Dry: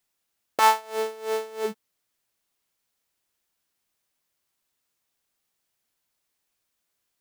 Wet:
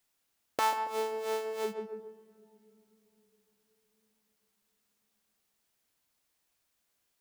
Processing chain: darkening echo 0.139 s, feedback 39%, low-pass 1100 Hz, level -6.5 dB; compressor 2:1, threshold -34 dBFS, peak gain reduction 11.5 dB; on a send at -17 dB: reverb RT60 3.5 s, pre-delay 3 ms

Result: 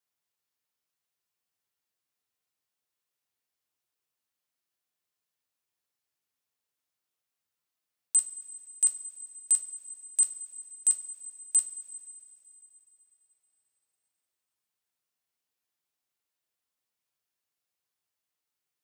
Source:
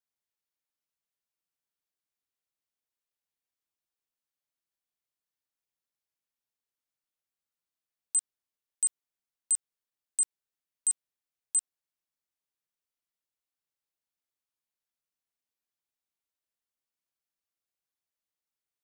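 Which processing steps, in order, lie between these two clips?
HPF 90 Hz 24 dB/oct; two-slope reverb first 0.26 s, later 3.2 s, from -18 dB, DRR 3.5 dB; gain +3 dB

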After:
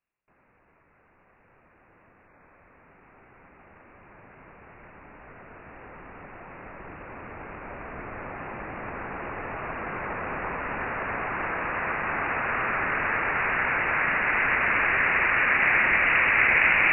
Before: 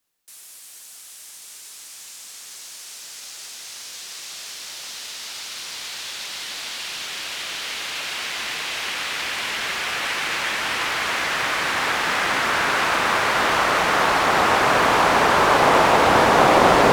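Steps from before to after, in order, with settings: 2.26–2.73 HPF 280 Hz -> 70 Hz 24 dB/oct; inverted band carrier 2800 Hz; gain -6 dB

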